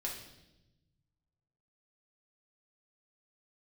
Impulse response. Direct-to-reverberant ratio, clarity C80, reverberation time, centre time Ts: -3.0 dB, 8.0 dB, 0.95 s, 35 ms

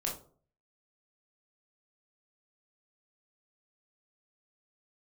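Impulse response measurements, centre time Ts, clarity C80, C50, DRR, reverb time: 28 ms, 13.0 dB, 7.0 dB, -2.5 dB, 0.45 s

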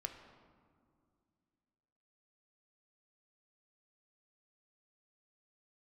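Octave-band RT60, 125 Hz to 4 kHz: 2.8, 3.0, 2.3, 2.1, 1.4, 1.0 s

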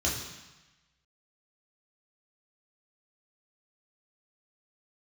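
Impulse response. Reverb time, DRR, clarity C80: 1.1 s, -4.5 dB, 6.5 dB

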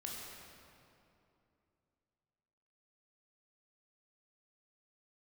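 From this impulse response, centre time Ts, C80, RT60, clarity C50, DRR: 0.135 s, 0.5 dB, 2.8 s, -0.5 dB, -3.0 dB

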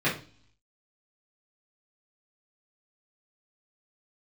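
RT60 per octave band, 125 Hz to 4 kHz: 0.80, 0.65, 0.40, 0.40, 0.40, 0.60 s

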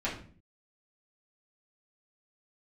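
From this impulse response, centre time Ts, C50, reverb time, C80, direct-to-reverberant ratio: 27 ms, 7.0 dB, 0.45 s, 11.5 dB, -8.5 dB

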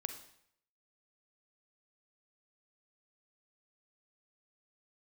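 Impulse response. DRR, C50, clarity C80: 7.5 dB, 8.5 dB, 12.0 dB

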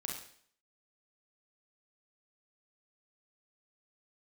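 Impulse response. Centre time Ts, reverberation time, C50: 39 ms, 0.55 s, 3.5 dB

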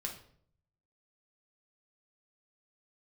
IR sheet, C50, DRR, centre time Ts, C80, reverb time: 8.0 dB, 0.0 dB, 20 ms, 12.5 dB, 0.60 s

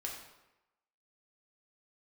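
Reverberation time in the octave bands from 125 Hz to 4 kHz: 0.85, 0.90, 0.95, 1.0, 0.85, 0.70 s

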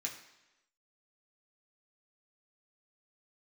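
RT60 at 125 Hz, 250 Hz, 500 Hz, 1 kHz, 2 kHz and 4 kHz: 0.85, 0.95, 0.95, 1.0, 1.0, 0.95 s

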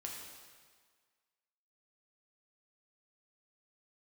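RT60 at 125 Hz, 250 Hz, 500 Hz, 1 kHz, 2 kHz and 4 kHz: 1.4, 1.5, 1.6, 1.7, 1.6, 1.5 s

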